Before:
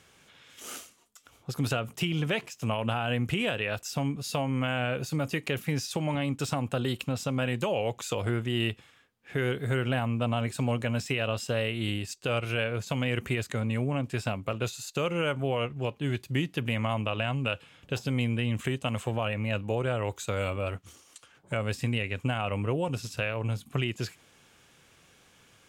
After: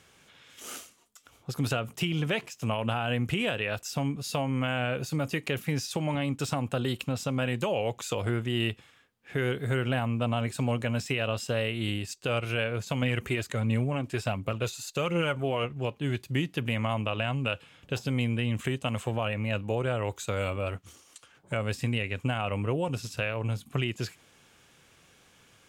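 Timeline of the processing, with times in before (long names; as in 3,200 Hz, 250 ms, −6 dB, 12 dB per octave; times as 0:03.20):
0:13.02–0:15.64: phase shifter 1.4 Hz, delay 3.4 ms, feedback 35%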